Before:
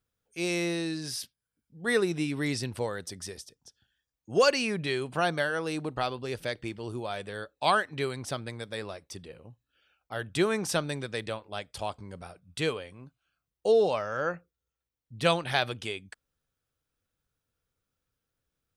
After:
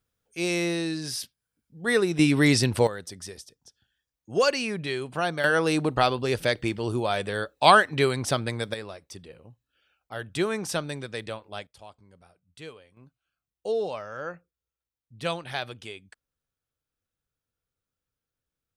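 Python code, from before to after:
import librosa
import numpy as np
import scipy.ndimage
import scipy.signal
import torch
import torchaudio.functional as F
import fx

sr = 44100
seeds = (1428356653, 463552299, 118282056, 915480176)

y = fx.gain(x, sr, db=fx.steps((0.0, 3.0), (2.19, 10.5), (2.87, 0.0), (5.44, 8.5), (8.74, -0.5), (11.67, -13.0), (12.97, -5.0)))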